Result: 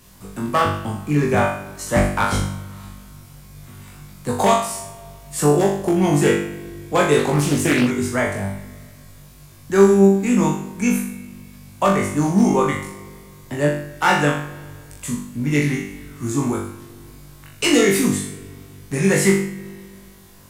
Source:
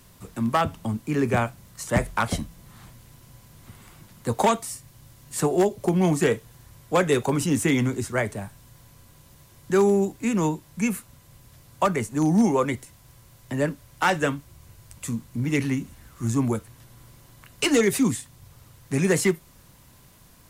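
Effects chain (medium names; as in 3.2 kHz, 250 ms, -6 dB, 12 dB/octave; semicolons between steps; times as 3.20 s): flutter echo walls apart 3.5 m, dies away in 0.58 s; spring tank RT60 2.2 s, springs 32/41 ms, chirp 30 ms, DRR 15.5 dB; 7.19–7.91 s: loudspeaker Doppler distortion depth 0.43 ms; trim +1.5 dB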